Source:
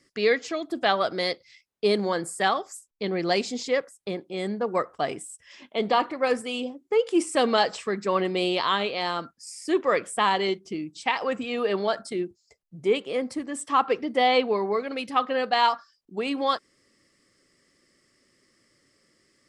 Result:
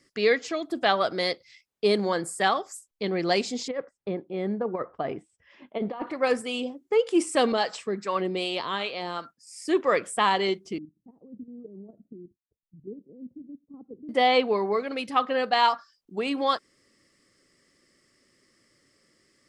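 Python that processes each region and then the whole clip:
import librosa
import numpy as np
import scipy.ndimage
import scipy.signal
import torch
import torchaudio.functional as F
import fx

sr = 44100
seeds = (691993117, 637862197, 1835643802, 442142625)

y = fx.chain(x, sr, fx.over_compress(threshold_db=-25.0, ratio=-0.5),
    fx.spacing_loss(db_at_10k=38), at=(3.68, 6.07))
y = fx.chain(y, sr, fx.highpass(hz=88.0, slope=12),
    fx.harmonic_tremolo(hz=2.6, depth_pct=70, crossover_hz=630.0), at=(7.52, 9.6))
y = fx.chain(y, sr, fx.level_steps(step_db=11),
    fx.ladder_lowpass(hz=330.0, resonance_pct=30), at=(10.78, 14.09))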